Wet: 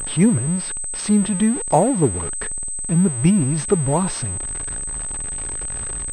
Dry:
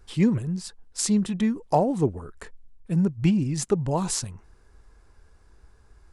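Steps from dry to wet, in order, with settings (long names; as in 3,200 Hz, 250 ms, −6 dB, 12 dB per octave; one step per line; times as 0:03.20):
converter with a step at zero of −31.5 dBFS
switching amplifier with a slow clock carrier 8,200 Hz
level +4.5 dB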